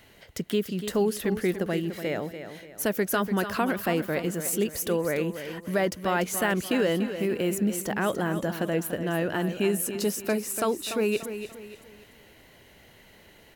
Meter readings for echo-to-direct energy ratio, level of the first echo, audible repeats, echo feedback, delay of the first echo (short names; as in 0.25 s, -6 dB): -9.5 dB, -10.0 dB, 3, 38%, 0.291 s